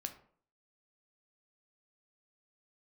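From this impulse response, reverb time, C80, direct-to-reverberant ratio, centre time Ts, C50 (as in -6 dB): 0.55 s, 16.0 dB, 6.0 dB, 9 ms, 12.0 dB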